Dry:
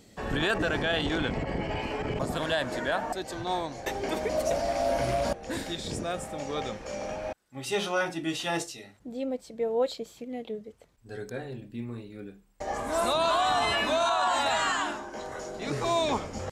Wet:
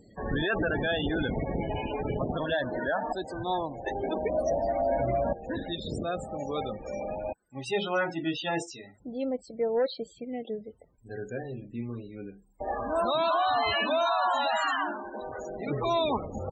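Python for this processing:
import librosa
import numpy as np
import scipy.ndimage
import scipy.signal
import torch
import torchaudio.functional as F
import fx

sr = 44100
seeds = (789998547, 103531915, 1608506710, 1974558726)

y = np.clip(10.0 ** (22.0 / 20.0) * x, -1.0, 1.0) / 10.0 ** (22.0 / 20.0)
y = fx.spec_topn(y, sr, count=32)
y = y * 10.0 ** (1.0 / 20.0)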